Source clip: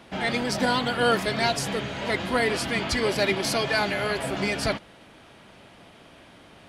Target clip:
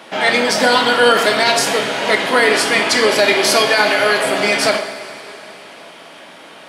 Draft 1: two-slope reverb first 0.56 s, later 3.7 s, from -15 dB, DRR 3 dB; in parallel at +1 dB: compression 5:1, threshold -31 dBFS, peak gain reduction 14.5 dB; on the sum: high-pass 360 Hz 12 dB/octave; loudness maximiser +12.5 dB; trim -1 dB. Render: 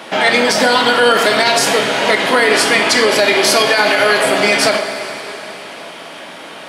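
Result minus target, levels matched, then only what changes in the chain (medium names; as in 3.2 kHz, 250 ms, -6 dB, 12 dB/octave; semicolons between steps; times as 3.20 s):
compression: peak gain reduction +14.5 dB
remove: compression 5:1, threshold -31 dBFS, peak gain reduction 14.5 dB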